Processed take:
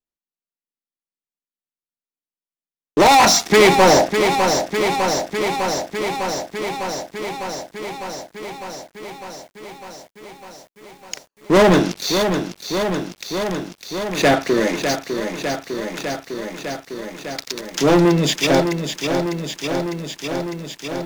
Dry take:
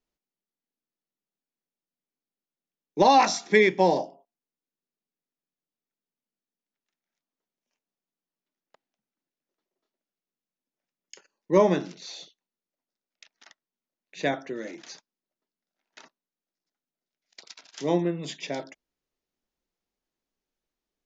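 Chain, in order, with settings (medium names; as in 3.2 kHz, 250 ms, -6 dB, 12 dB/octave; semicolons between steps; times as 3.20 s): waveshaping leveller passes 5; bit-crushed delay 603 ms, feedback 80%, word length 8-bit, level -7 dB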